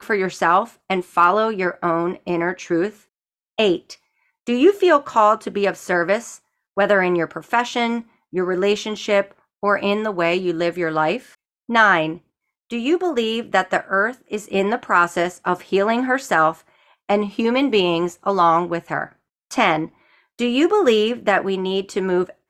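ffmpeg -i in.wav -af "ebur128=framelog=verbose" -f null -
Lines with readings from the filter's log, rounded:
Integrated loudness:
  I:         -19.6 LUFS
  Threshold: -30.1 LUFS
Loudness range:
  LRA:         2.1 LU
  Threshold: -40.2 LUFS
  LRA low:   -21.2 LUFS
  LRA high:  -19.1 LUFS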